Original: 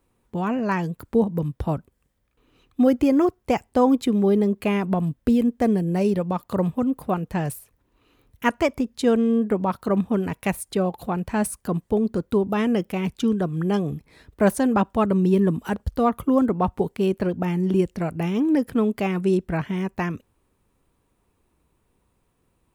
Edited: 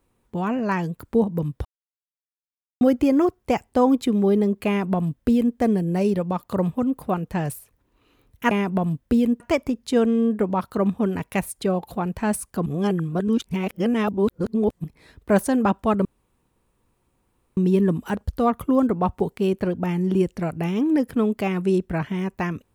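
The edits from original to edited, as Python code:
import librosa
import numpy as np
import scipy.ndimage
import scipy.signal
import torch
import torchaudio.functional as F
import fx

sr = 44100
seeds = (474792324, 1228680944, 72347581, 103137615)

y = fx.edit(x, sr, fx.silence(start_s=1.65, length_s=1.16),
    fx.duplicate(start_s=4.67, length_s=0.89, to_s=8.51),
    fx.reverse_span(start_s=11.77, length_s=2.18),
    fx.insert_room_tone(at_s=15.16, length_s=1.52), tone=tone)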